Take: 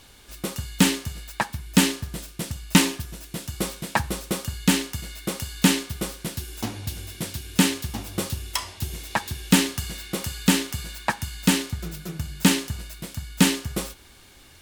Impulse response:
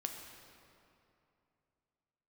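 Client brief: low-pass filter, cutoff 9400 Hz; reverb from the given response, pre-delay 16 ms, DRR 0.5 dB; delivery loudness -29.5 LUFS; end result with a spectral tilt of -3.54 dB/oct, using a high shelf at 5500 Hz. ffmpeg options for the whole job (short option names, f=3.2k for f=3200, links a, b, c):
-filter_complex "[0:a]lowpass=9.4k,highshelf=f=5.5k:g=4,asplit=2[a][b];[1:a]atrim=start_sample=2205,adelay=16[c];[b][c]afir=irnorm=-1:irlink=0,volume=0dB[d];[a][d]amix=inputs=2:normalize=0,volume=-7dB"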